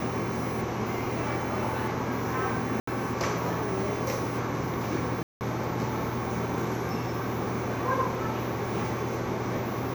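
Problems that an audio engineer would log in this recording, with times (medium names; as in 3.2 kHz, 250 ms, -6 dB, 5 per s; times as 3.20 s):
2.80–2.87 s: dropout 74 ms
5.23–5.41 s: dropout 179 ms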